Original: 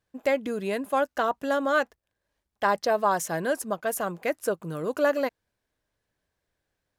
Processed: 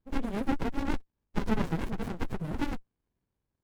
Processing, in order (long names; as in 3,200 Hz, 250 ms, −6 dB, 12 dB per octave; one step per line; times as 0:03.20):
time stretch by phase vocoder 0.52×
windowed peak hold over 65 samples
level +3.5 dB